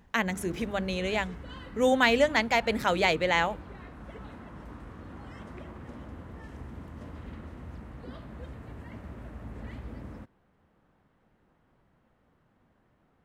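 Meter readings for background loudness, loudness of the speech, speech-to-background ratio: −44.5 LKFS, −26.5 LKFS, 18.0 dB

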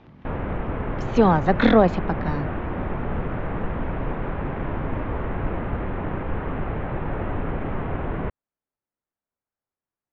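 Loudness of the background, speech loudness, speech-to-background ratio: −29.5 LKFS, −20.5 LKFS, 9.0 dB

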